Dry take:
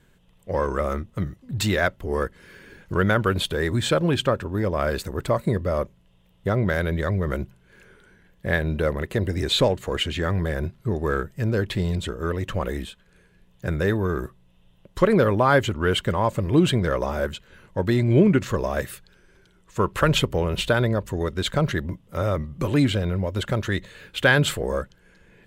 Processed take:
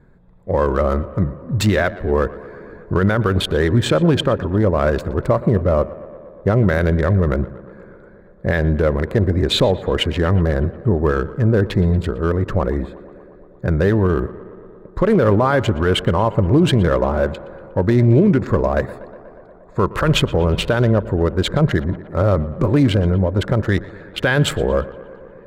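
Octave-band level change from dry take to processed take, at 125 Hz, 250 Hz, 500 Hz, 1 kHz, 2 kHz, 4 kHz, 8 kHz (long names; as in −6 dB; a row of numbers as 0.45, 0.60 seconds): +7.5, +6.5, +6.0, +4.0, +1.5, +3.0, +1.0 decibels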